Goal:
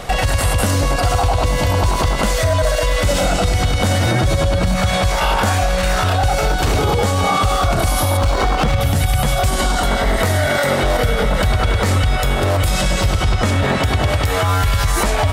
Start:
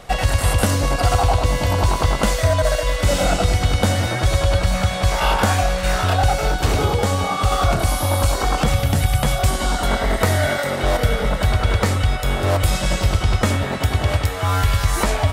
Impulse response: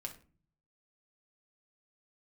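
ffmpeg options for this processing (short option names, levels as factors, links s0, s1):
-filter_complex "[0:a]asettb=1/sr,asplit=3[s0][s1][s2];[s0]atrim=end=4.064[s3];[s1]atrim=start=4.06:end=4.76,asetpts=PTS-STARTPTS,afade=t=in:d=0.004:c=qsin,afade=t=out:st=0.696:d=0.004:c=qsin,equalizer=f=210:t=o:w=1.9:g=8.5[s4];[s2]atrim=start=4.756[s5];[s3][s4]acrossfade=d=0.004:c1=hsin:c2=qsin[s6];[s6][s5]acrossfade=d=0.004:c1=qsin:c2=hsin,asettb=1/sr,asplit=3[s7][s8][s9];[s7]atrim=end=8.174[s10];[s8]atrim=start=8.17:end=8.81,asetpts=PTS-STARTPTS,afade=t=in:d=0.004:c=qsin,afade=t=out:st=0.636:d=0.004:c=qsin,adynamicsmooth=sensitivity=3:basefreq=2100[s11];[s9]atrim=start=8.806[s12];[s10][s11]acrossfade=d=0.004:c1=hsin:c2=qsin[s13];[s13][s12]acrossfade=d=0.004:c1=qsin:c2=hsin,asettb=1/sr,asplit=3[s14][s15][s16];[s14]atrim=end=13.324[s17];[s15]atrim=start=13.32:end=14.03,asetpts=PTS-STARTPTS,afade=t=in:d=0.004:c=qsin,afade=t=out:st=0.706:d=0.004:c=qsin,highshelf=f=11000:g=-8[s18];[s16]atrim=start=14.026[s19];[s17][s18]acrossfade=d=0.004:c1=hsin:c2=qsin[s20];[s20][s19]acrossfade=d=0.004:c1=qsin:c2=hsin,acompressor=threshold=0.126:ratio=6,alimiter=level_in=7.5:limit=0.891:release=50:level=0:latency=1,volume=0.473"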